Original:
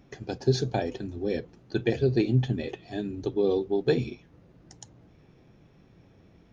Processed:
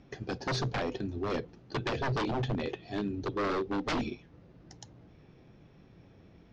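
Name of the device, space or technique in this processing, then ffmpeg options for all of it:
synthesiser wavefolder: -filter_complex "[0:a]asettb=1/sr,asplit=3[a][b][c];[a]atrim=end=3.684[d];[b]atrim=start=3.68:end=4.08,asetpts=PTS-STARTPTS,afade=t=in:d=0.004:c=qsin,afade=t=out:st=0.396:d=0.004:c=qsin,aecho=1:1:3.8:0.61,atrim=end_sample=17640[e];[c]atrim=start=4.076[f];[d][e]acrossfade=d=0.004:c1=hsin:c2=qsin[g];[g][f]acrossfade=d=0.004:c1=qsin:c2=hsin,aeval=exprs='0.0531*(abs(mod(val(0)/0.0531+3,4)-2)-1)':c=same,lowpass=f=6k:w=0.5412,lowpass=f=6k:w=1.3066"

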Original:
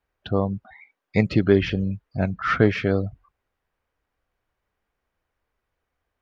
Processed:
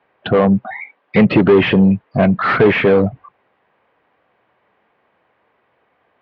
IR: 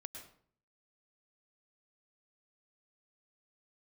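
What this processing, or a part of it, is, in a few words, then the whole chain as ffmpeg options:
overdrive pedal into a guitar cabinet: -filter_complex "[0:a]asplit=2[a][b];[b]highpass=f=720:p=1,volume=31dB,asoftclip=type=tanh:threshold=-2.5dB[c];[a][c]amix=inputs=2:normalize=0,lowpass=f=1.1k:p=1,volume=-6dB,highpass=99,equalizer=f=130:t=q:w=4:g=4,equalizer=f=200:t=q:w=4:g=4,equalizer=f=1.4k:t=q:w=4:g=-5,lowpass=f=3.6k:w=0.5412,lowpass=f=3.6k:w=1.3066,volume=1dB"

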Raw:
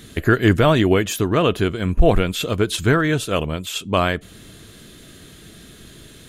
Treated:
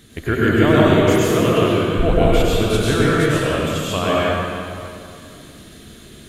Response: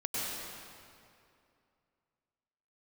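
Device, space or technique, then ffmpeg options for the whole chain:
stairwell: -filter_complex "[1:a]atrim=start_sample=2205[a];[0:a][a]afir=irnorm=-1:irlink=0,volume=-4dB"

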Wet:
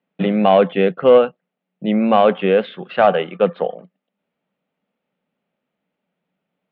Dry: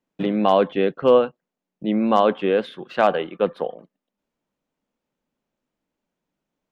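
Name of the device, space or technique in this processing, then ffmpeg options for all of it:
overdrive pedal into a guitar cabinet: -filter_complex "[0:a]asplit=2[a][b];[b]highpass=f=720:p=1,volume=9dB,asoftclip=type=tanh:threshold=-3.5dB[c];[a][c]amix=inputs=2:normalize=0,lowpass=f=2.6k:p=1,volume=-6dB,highpass=93,equalizer=f=180:t=q:w=4:g=9,equalizer=f=320:t=q:w=4:g=-6,equalizer=f=1k:t=q:w=4:g=-8,equalizer=f=1.6k:t=q:w=4:g=-4,lowpass=f=3.5k:w=0.5412,lowpass=f=3.5k:w=1.3066,volume=5dB"

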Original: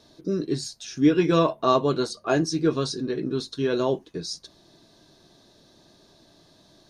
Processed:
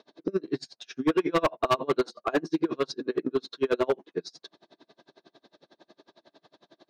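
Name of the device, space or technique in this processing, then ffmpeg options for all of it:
helicopter radio: -af "highpass=320,lowpass=2.8k,aeval=exprs='val(0)*pow(10,-34*(0.5-0.5*cos(2*PI*11*n/s))/20)':c=same,asoftclip=type=hard:threshold=-25.5dB,volume=8dB"

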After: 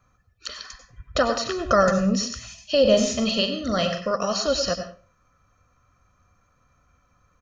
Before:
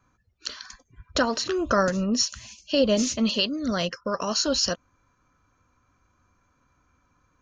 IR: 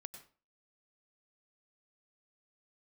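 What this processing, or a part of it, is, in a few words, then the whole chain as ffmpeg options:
microphone above a desk: -filter_complex "[0:a]acrossover=split=3500[a][b];[b]acompressor=threshold=-30dB:ratio=4:attack=1:release=60[c];[a][c]amix=inputs=2:normalize=0,aecho=1:1:1.6:0.52[d];[1:a]atrim=start_sample=2205[e];[d][e]afir=irnorm=-1:irlink=0,asettb=1/sr,asplit=3[f][g][h];[f]atrim=end=2.814[i];[g]atrim=start=2.81:end=4.16,asetpts=PTS-STARTPTS,afade=t=in:d=0.004:c=qsin,afade=t=out:st=1.346:d=0.004:c=qsin,asplit=2[j][k];[k]adelay=42,volume=-8dB[l];[j][l]amix=inputs=2:normalize=0,atrim=end_sample=59535[m];[h]atrim=start=4.156[n];[i][m]acrossfade=d=0.004:c1=hsin:c2=qsin[o];[o][n]acrossfade=d=0.004:c1=qsin:c2=hsin,volume=7dB"

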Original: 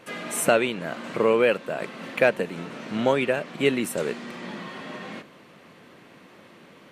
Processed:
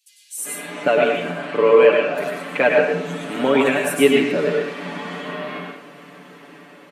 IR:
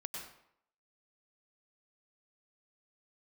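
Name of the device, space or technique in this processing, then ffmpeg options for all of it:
far laptop microphone: -filter_complex "[0:a]asettb=1/sr,asplit=3[a][b][c];[a]atrim=end=1.314[d];[b]atrim=start=1.31:end=2.15,asetpts=PTS-STARTPTS,afade=t=in:d=0.004:c=qsin,afade=t=out:st=0.836:d=0.004:c=qsin,lowpass=5.7k[e];[c]atrim=start=2.146[f];[d][e]acrossfade=d=0.004:c1=hsin:c2=qsin[g];[g][f]acrossfade=d=0.004:c1=qsin:c2=hsin,lowshelf=f=170:g=4,aecho=1:1:6.9:0.82,acrossover=split=4300[h][i];[h]adelay=380[j];[j][i]amix=inputs=2:normalize=0[k];[1:a]atrim=start_sample=2205[l];[k][l]afir=irnorm=-1:irlink=0,highpass=f=190:w=0.5412,highpass=f=190:w=1.3066,dynaudnorm=f=500:g=5:m=7dB,volume=1dB"

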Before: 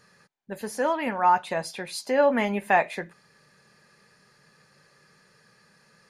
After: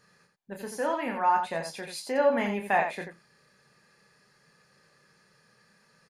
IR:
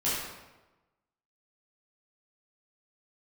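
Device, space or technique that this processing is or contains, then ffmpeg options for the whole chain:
slapback doubling: -filter_complex "[0:a]asplit=3[a][b][c];[b]adelay=30,volume=-7dB[d];[c]adelay=87,volume=-7dB[e];[a][d][e]amix=inputs=3:normalize=0,volume=-5dB"

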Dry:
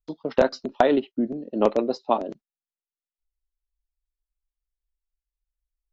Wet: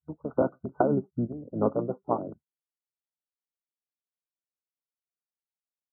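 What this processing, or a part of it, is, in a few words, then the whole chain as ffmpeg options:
octave pedal: -filter_complex "[0:a]afftfilt=real='re*between(b*sr/4096,150,1500)':imag='im*between(b*sr/4096,150,1500)':win_size=4096:overlap=0.75,asplit=2[a][b];[b]asetrate=22050,aresample=44100,atempo=2,volume=-4dB[c];[a][c]amix=inputs=2:normalize=0,volume=-6.5dB"

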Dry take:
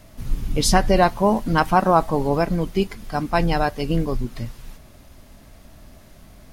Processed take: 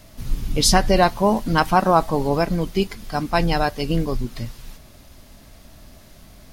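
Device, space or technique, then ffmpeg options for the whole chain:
presence and air boost: -af "equalizer=f=4.5k:t=o:w=1.4:g=4.5,highshelf=f=12k:g=5.5"

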